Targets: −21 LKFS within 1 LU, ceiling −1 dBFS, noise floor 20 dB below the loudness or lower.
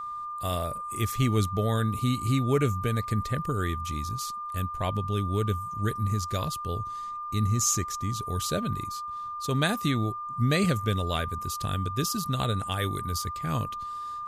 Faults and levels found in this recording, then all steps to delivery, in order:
interfering tone 1,200 Hz; level of the tone −33 dBFS; integrated loudness −29.0 LKFS; sample peak −11.5 dBFS; target loudness −21.0 LKFS
→ notch filter 1,200 Hz, Q 30
level +8 dB

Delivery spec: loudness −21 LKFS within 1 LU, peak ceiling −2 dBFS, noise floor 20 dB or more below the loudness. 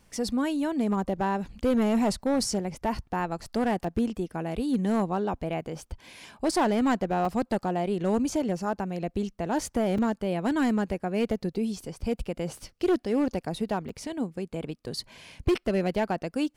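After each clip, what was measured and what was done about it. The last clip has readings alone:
share of clipped samples 1.1%; peaks flattened at −18.5 dBFS; number of dropouts 4; longest dropout 3.8 ms; integrated loudness −28.5 LKFS; sample peak −18.5 dBFS; target loudness −21.0 LKFS
→ clipped peaks rebuilt −18.5 dBFS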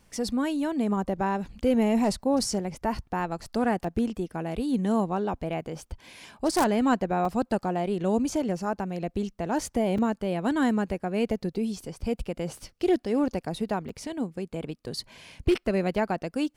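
share of clipped samples 0.0%; number of dropouts 4; longest dropout 3.8 ms
→ repair the gap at 0:03.84/0:07.25/0:09.98/0:13.89, 3.8 ms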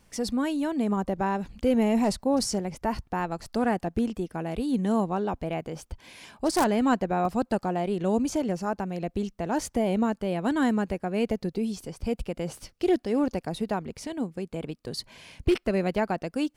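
number of dropouts 0; integrated loudness −28.0 LKFS; sample peak −9.5 dBFS; target loudness −21.0 LKFS
→ level +7 dB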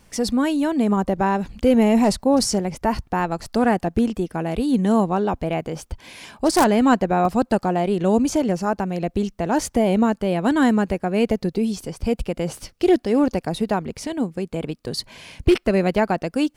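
integrated loudness −21.0 LKFS; sample peak −2.5 dBFS; background noise floor −60 dBFS

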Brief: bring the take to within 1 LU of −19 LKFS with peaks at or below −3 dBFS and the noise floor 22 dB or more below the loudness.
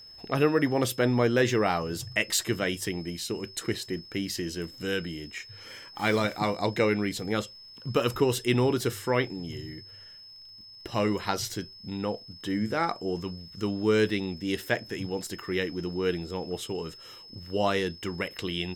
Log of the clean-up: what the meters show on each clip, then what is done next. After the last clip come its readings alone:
crackle rate 43 per second; interfering tone 5,200 Hz; level of the tone −46 dBFS; integrated loudness −29.0 LKFS; sample peak −9.0 dBFS; target loudness −19.0 LKFS
→ click removal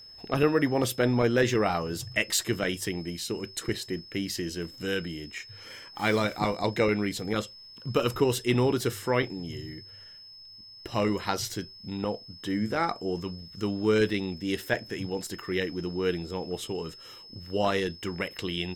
crackle rate 1.7 per second; interfering tone 5,200 Hz; level of the tone −46 dBFS
→ notch filter 5,200 Hz, Q 30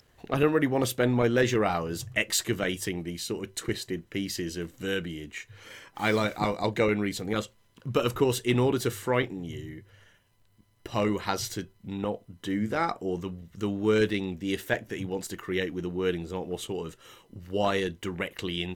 interfering tone none found; integrated loudness −29.0 LKFS; sample peak −9.0 dBFS; target loudness −19.0 LKFS
→ level +10 dB
brickwall limiter −3 dBFS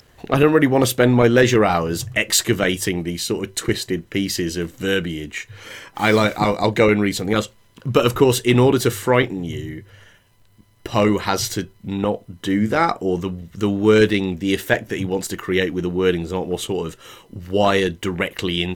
integrated loudness −19.5 LKFS; sample peak −3.0 dBFS; background noise floor −54 dBFS

